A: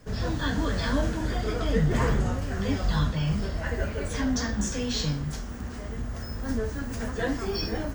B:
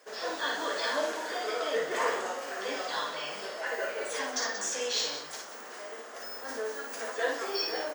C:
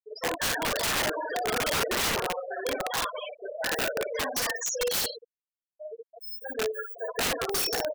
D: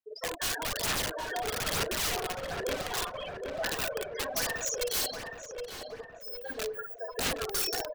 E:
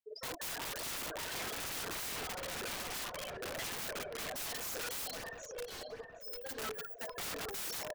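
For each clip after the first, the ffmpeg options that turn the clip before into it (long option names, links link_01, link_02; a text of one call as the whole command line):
ffmpeg -i in.wav -af "highpass=frequency=450:width=0.5412,highpass=frequency=450:width=1.3066,aecho=1:1:55.39|180.8:0.631|0.282" out.wav
ffmpeg -i in.wav -af "afftfilt=real='re*gte(hypot(re,im),0.0501)':imag='im*gte(hypot(re,im),0.0501)':win_size=1024:overlap=0.75,aeval=exprs='(mod(26.6*val(0)+1,2)-1)/26.6':channel_layout=same,volume=6.5dB" out.wav
ffmpeg -i in.wav -filter_complex "[0:a]acrossover=split=160|3000[link_01][link_02][link_03];[link_02]acompressor=threshold=-32dB:ratio=6[link_04];[link_01][link_04][link_03]amix=inputs=3:normalize=0,aphaser=in_gain=1:out_gain=1:delay=2.8:decay=0.42:speed=1.1:type=sinusoidal,asplit=2[link_05][link_06];[link_06]adelay=769,lowpass=frequency=2200:poles=1,volume=-5dB,asplit=2[link_07][link_08];[link_08]adelay=769,lowpass=frequency=2200:poles=1,volume=0.5,asplit=2[link_09][link_10];[link_10]adelay=769,lowpass=frequency=2200:poles=1,volume=0.5,asplit=2[link_11][link_12];[link_12]adelay=769,lowpass=frequency=2200:poles=1,volume=0.5,asplit=2[link_13][link_14];[link_14]adelay=769,lowpass=frequency=2200:poles=1,volume=0.5,asplit=2[link_15][link_16];[link_16]adelay=769,lowpass=frequency=2200:poles=1,volume=0.5[link_17];[link_05][link_07][link_09][link_11][link_13][link_15][link_17]amix=inputs=7:normalize=0,volume=-3dB" out.wav
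ffmpeg -i in.wav -af "aeval=exprs='(mod(37.6*val(0)+1,2)-1)/37.6':channel_layout=same,volume=-4dB" out.wav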